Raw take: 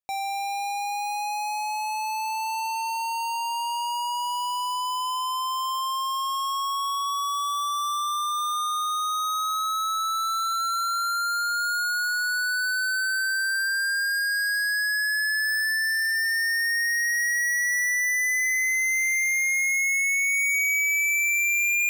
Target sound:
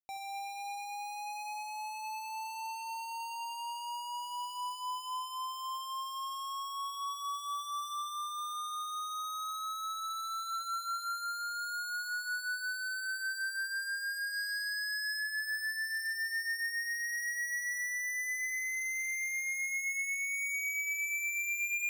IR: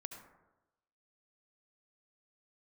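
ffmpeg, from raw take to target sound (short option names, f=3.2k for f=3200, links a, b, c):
-filter_complex "[0:a]asplit=3[a][b][c];[a]afade=t=out:st=14.32:d=0.02[d];[b]equalizer=f=5.7k:t=o:w=0.28:g=13.5,afade=t=in:st=14.32:d=0.02,afade=t=out:st=15.19:d=0.02[e];[c]afade=t=in:st=15.19:d=0.02[f];[d][e][f]amix=inputs=3:normalize=0[g];[1:a]atrim=start_sample=2205,afade=t=out:st=0.13:d=0.01,atrim=end_sample=6174[h];[g][h]afir=irnorm=-1:irlink=0,volume=-7dB"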